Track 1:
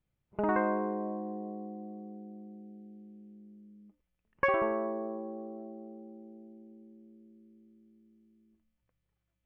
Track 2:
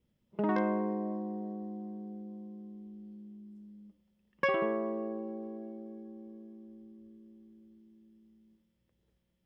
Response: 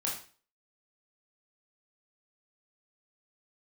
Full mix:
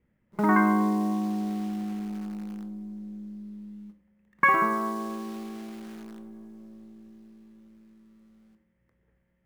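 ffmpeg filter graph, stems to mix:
-filter_complex "[0:a]bandpass=frequency=850:width_type=q:width=0.54:csg=0,acrusher=bits=9:dc=4:mix=0:aa=0.000001,volume=1dB,asplit=2[link_01][link_02];[link_02]volume=-10dB[link_03];[1:a]highshelf=frequency=2900:width_type=q:width=3:gain=-14,volume=2dB,asplit=2[link_04][link_05];[link_05]volume=-9dB[link_06];[2:a]atrim=start_sample=2205[link_07];[link_03][link_06]amix=inputs=2:normalize=0[link_08];[link_08][link_07]afir=irnorm=-1:irlink=0[link_09];[link_01][link_04][link_09]amix=inputs=3:normalize=0"

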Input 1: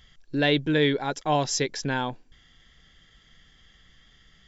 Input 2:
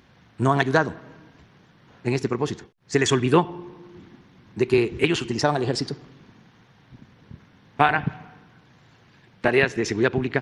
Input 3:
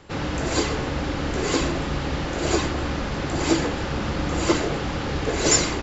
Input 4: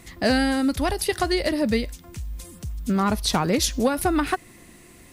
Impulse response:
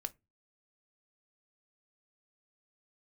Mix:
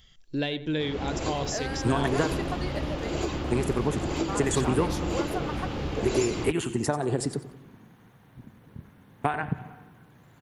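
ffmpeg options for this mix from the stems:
-filter_complex "[0:a]volume=-2dB,asplit=2[link_01][link_02];[link_02]volume=-19dB[link_03];[1:a]acompressor=threshold=-21dB:ratio=6,aexciter=amount=15.7:drive=3.1:freq=7700,adelay=1450,volume=0dB,asplit=2[link_04][link_05];[link_05]volume=-15dB[link_06];[2:a]lowpass=frequency=2300:poles=1,adelay=700,volume=-4dB[link_07];[3:a]highpass=550,adelay=1300,volume=-8dB[link_08];[link_01][link_07]amix=inputs=2:normalize=0,aexciter=amount=3.3:drive=4.9:freq=2500,acompressor=threshold=-23dB:ratio=6,volume=0dB[link_09];[link_03][link_06]amix=inputs=2:normalize=0,aecho=0:1:91|182|273|364:1|0.26|0.0676|0.0176[link_10];[link_04][link_08][link_09][link_10]amix=inputs=4:normalize=0,highshelf=frequency=2200:gain=-10.5"

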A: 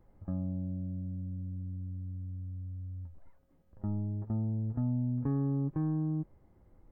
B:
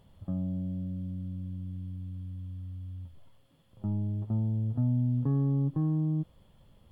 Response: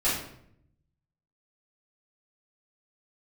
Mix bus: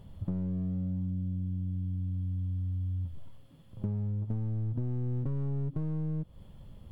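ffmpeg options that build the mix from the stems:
-filter_complex "[0:a]volume=-17.5dB[link_01];[1:a]volume=2dB[link_02];[link_01][link_02]amix=inputs=2:normalize=0,aeval=exprs='clip(val(0),-1,0.0299)':channel_layout=same,lowshelf=frequency=330:gain=9,acompressor=threshold=-30dB:ratio=6"

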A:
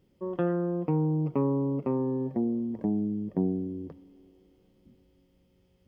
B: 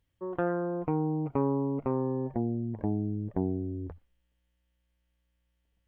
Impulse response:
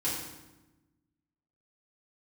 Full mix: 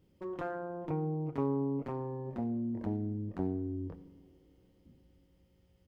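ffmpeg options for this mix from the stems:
-filter_complex "[0:a]equalizer=frequency=79:width_type=o:width=0.97:gain=5,acompressor=threshold=-36dB:ratio=4,aeval=exprs='0.0299*(abs(mod(val(0)/0.0299+3,4)-2)-1)':channel_layout=same,volume=-4.5dB,asplit=2[link_01][link_02];[link_02]volume=-12.5dB[link_03];[1:a]adelay=26,volume=-6dB[link_04];[2:a]atrim=start_sample=2205[link_05];[link_03][link_05]afir=irnorm=-1:irlink=0[link_06];[link_01][link_04][link_06]amix=inputs=3:normalize=0"

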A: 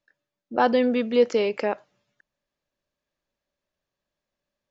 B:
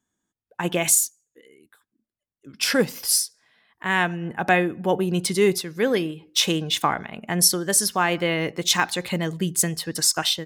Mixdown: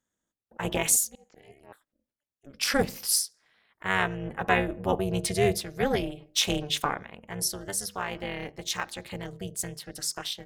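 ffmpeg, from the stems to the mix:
ffmpeg -i stem1.wav -i stem2.wav -filter_complex "[0:a]aeval=exprs='val(0)*pow(10,-31*if(lt(mod(-5.2*n/s,1),2*abs(-5.2)/1000),1-mod(-5.2*n/s,1)/(2*abs(-5.2)/1000),(mod(-5.2*n/s,1)-2*abs(-5.2)/1000)/(1-2*abs(-5.2)/1000))/20)':channel_layout=same,volume=-15.5dB[link_01];[1:a]bandreject=frequency=50:width_type=h:width=6,bandreject=frequency=100:width_type=h:width=6,bandreject=frequency=150:width_type=h:width=6,bandreject=frequency=200:width_type=h:width=6,bandreject=frequency=250:width_type=h:width=6,bandreject=frequency=300:width_type=h:width=6,bandreject=frequency=350:width_type=h:width=6,volume=-0.5dB,afade=type=out:start_time=6.78:duration=0.42:silence=0.446684[link_02];[link_01][link_02]amix=inputs=2:normalize=0,tremolo=f=290:d=0.947" out.wav

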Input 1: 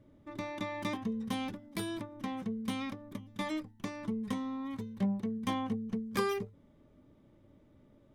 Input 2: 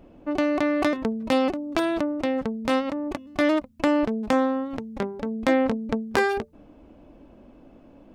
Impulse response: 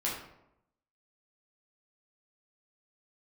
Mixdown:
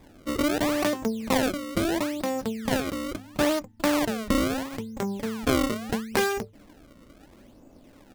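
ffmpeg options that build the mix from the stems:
-filter_complex "[0:a]volume=1dB[link_01];[1:a]acrusher=samples=30:mix=1:aa=0.000001:lfo=1:lforange=48:lforate=0.75,volume=-1,adelay=0.5,volume=-2.5dB[link_02];[link_01][link_02]amix=inputs=2:normalize=0"

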